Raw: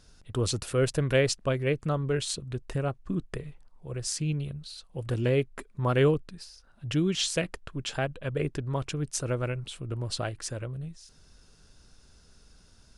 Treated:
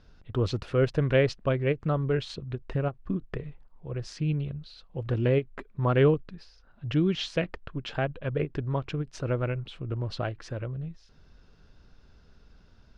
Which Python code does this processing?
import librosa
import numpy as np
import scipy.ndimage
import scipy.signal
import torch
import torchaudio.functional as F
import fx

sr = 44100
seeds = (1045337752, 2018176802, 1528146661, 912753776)

y = fx.air_absorb(x, sr, metres=250.0)
y = fx.end_taper(y, sr, db_per_s=400.0)
y = y * librosa.db_to_amplitude(2.0)